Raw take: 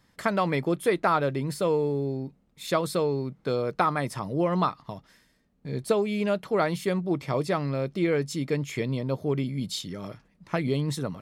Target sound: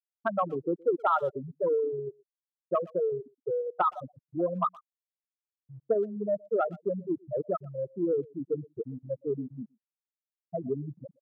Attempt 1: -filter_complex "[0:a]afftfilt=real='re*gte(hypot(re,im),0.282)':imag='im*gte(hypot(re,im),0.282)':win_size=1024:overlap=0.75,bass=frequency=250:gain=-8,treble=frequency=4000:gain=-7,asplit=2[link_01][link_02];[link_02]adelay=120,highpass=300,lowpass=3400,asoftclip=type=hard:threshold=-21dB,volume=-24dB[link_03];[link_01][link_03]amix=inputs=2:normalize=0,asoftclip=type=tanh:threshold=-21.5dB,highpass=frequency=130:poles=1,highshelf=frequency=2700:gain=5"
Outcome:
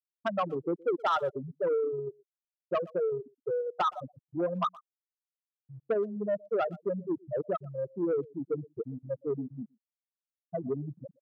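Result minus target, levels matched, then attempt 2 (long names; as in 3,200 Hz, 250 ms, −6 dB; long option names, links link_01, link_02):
soft clipping: distortion +14 dB
-filter_complex "[0:a]afftfilt=real='re*gte(hypot(re,im),0.282)':imag='im*gte(hypot(re,im),0.282)':win_size=1024:overlap=0.75,bass=frequency=250:gain=-8,treble=frequency=4000:gain=-7,asplit=2[link_01][link_02];[link_02]adelay=120,highpass=300,lowpass=3400,asoftclip=type=hard:threshold=-21dB,volume=-24dB[link_03];[link_01][link_03]amix=inputs=2:normalize=0,asoftclip=type=tanh:threshold=-12dB,highpass=frequency=130:poles=1,highshelf=frequency=2700:gain=5"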